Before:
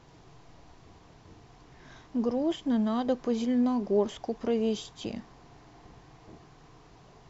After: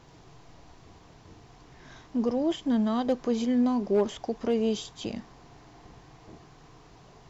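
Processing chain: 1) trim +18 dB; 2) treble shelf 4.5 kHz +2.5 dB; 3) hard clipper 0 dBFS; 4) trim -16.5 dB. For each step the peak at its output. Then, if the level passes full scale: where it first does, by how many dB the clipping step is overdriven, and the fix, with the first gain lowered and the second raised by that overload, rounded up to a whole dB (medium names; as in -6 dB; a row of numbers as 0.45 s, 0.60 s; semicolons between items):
+3.0 dBFS, +3.0 dBFS, 0.0 dBFS, -16.5 dBFS; step 1, 3.0 dB; step 1 +15 dB, step 4 -13.5 dB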